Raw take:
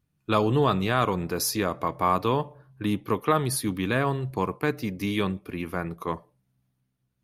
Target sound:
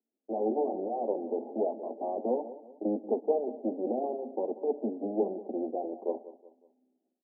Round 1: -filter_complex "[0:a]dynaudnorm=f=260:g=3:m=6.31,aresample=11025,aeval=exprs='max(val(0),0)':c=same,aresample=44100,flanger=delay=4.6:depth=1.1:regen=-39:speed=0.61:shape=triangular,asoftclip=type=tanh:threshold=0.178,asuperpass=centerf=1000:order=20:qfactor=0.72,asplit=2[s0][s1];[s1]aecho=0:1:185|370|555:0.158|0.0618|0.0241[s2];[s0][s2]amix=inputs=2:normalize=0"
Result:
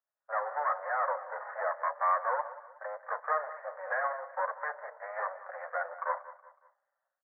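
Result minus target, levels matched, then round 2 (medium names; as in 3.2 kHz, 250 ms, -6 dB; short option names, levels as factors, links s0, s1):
saturation: distortion +13 dB; 1 kHz band +8.0 dB
-filter_complex "[0:a]dynaudnorm=f=260:g=3:m=6.31,aresample=11025,aeval=exprs='max(val(0),0)':c=same,aresample=44100,flanger=delay=4.6:depth=1.1:regen=-39:speed=0.61:shape=triangular,asoftclip=type=tanh:threshold=0.473,asuperpass=centerf=430:order=20:qfactor=0.72,asplit=2[s0][s1];[s1]aecho=0:1:185|370|555:0.158|0.0618|0.0241[s2];[s0][s2]amix=inputs=2:normalize=0"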